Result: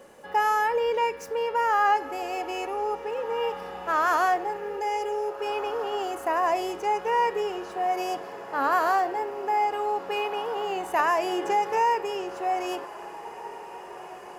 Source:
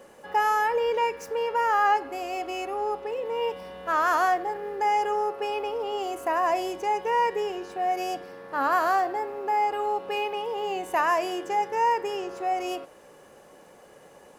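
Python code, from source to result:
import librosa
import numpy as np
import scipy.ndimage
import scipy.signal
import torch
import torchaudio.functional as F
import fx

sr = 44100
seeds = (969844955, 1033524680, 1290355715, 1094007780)

p1 = fx.fixed_phaser(x, sr, hz=480.0, stages=4, at=(4.77, 5.46))
p2 = p1 + fx.echo_diffused(p1, sr, ms=1691, feedback_pct=60, wet_db=-15.5, dry=0)
y = fx.band_squash(p2, sr, depth_pct=70, at=(10.99, 11.95))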